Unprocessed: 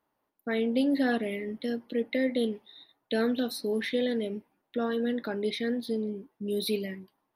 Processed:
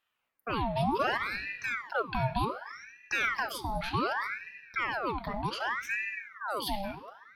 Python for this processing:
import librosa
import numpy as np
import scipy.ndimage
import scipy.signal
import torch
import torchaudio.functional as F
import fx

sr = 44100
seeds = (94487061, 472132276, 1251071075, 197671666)

y = fx.room_shoebox(x, sr, seeds[0], volume_m3=2000.0, walls='mixed', distance_m=0.6)
y = fx.ring_lfo(y, sr, carrier_hz=1300.0, swing_pct=70, hz=0.66)